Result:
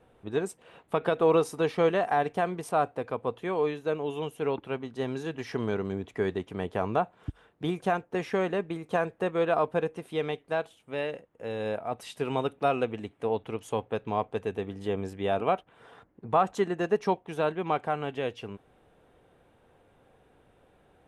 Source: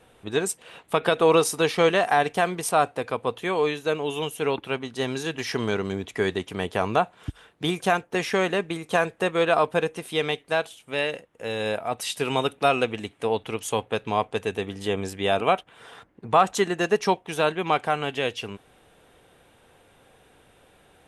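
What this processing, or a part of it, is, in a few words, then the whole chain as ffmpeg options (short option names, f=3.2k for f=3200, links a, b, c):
through cloth: -af "highshelf=f=2k:g=-13.5,volume=-3dB"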